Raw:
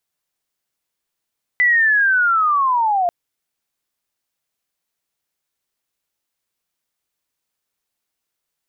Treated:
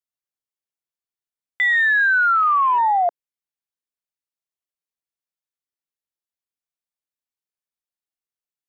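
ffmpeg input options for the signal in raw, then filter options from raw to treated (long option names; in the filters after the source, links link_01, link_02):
-f lavfi -i "aevalsrc='pow(10,(-11-3.5*t/1.49)/20)*sin(2*PI*(2000*t-1320*t*t/(2*1.49)))':duration=1.49:sample_rate=44100"
-af "afwtdn=0.0355,alimiter=limit=-13dB:level=0:latency=1"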